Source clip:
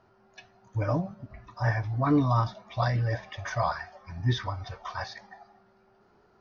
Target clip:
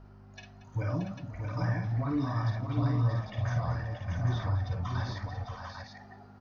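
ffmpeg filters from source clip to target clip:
ffmpeg -i in.wav -filter_complex "[0:a]asettb=1/sr,asplit=3[link_01][link_02][link_03];[link_01]atrim=end=2.504[link_04];[link_02]atrim=start=2.5:end=4.83,asetpts=PTS-STARTPTS,afade=type=in:duration=0.004:curve=qsin,afade=type=out:start_time=2.326:duration=0.004:curve=qsin,tiltshelf=frequency=690:gain=7.5[link_05];[link_03]atrim=start=4.826[link_06];[link_04][link_05]acrossfade=duration=0.004:curve1=hsin:curve2=qsin[link_07];[link_07][link_06]acrossfade=duration=0.004:curve1=qsin:curve2=hsin,alimiter=limit=-21.5dB:level=0:latency=1:release=113,acrossover=split=390|1100[link_08][link_09][link_10];[link_08]acompressor=threshold=-29dB:ratio=4[link_11];[link_09]acompressor=threshold=-46dB:ratio=4[link_12];[link_10]acompressor=threshold=-44dB:ratio=4[link_13];[link_11][link_12][link_13]amix=inputs=3:normalize=0,aeval=exprs='val(0)+0.00316*(sin(2*PI*50*n/s)+sin(2*PI*2*50*n/s)/2+sin(2*PI*3*50*n/s)/3+sin(2*PI*4*50*n/s)/4+sin(2*PI*5*50*n/s)/5)':channel_layout=same,aecho=1:1:51|231|519|628|686|796:0.562|0.178|0.119|0.501|0.398|0.562" out.wav

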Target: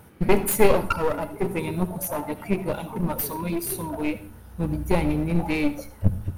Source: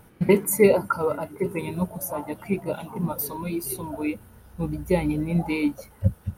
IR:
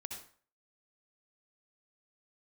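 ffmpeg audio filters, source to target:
-filter_complex "[0:a]highpass=54,aeval=exprs='clip(val(0),-1,0.0355)':channel_layout=same,asplit=2[link_01][link_02];[1:a]atrim=start_sample=2205,lowshelf=frequency=65:gain=12[link_03];[link_02][link_03]afir=irnorm=-1:irlink=0,volume=-5dB[link_04];[link_01][link_04]amix=inputs=2:normalize=0"

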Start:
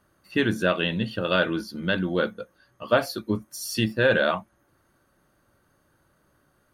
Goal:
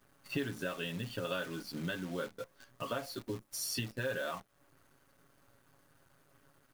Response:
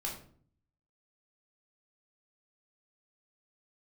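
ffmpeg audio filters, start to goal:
-af "acompressor=threshold=-37dB:ratio=6,aecho=1:1:7.3:0.73,acrusher=bits=9:dc=4:mix=0:aa=0.000001"

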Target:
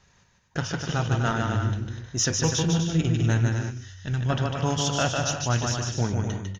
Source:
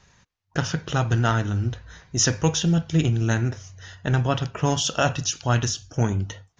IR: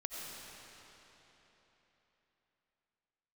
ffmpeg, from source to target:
-filter_complex "[0:a]aecho=1:1:150|247.5|310.9|352.1|378.8:0.631|0.398|0.251|0.158|0.1,asoftclip=type=tanh:threshold=-6.5dB,asettb=1/sr,asplit=3[link_01][link_02][link_03];[link_01]atrim=end=3.704[link_04];[link_02]atrim=start=3.7:end=4.3,asetpts=PTS-STARTPTS,afade=type=in:duration=0.004:curve=qsin,afade=type=out:start_time=0.596:duration=0.004:curve=qsin,equalizer=frequency=670:width=0.51:gain=-11[link_05];[link_03]atrim=start=4.296[link_06];[link_04][link_05]acrossfade=duration=0.004:curve1=hsin:curve2=qsin[link_07];[link_07][link_06]acrossfade=duration=0.004:curve1=qsin:curve2=hsin,volume=-3.5dB"

